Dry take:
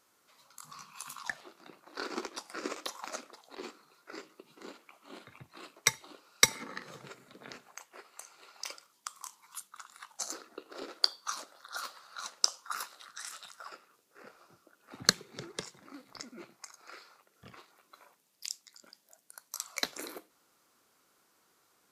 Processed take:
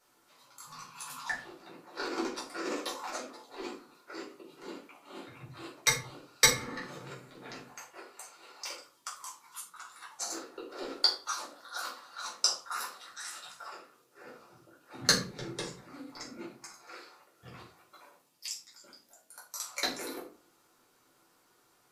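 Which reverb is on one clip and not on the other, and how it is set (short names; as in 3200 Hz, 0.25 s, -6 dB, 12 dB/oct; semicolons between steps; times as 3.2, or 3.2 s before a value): shoebox room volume 250 m³, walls furnished, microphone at 4.5 m; gain -5.5 dB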